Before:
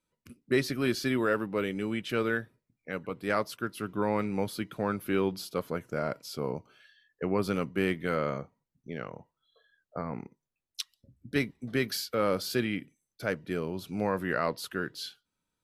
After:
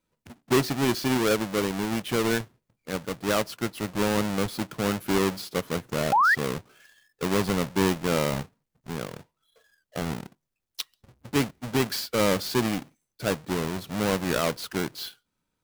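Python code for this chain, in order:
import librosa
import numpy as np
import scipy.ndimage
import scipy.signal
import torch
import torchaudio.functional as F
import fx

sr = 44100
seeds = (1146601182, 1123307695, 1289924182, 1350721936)

y = fx.halfwave_hold(x, sr)
y = fx.spec_paint(y, sr, seeds[0], shape='rise', start_s=6.12, length_s=0.23, low_hz=750.0, high_hz=2000.0, level_db=-19.0)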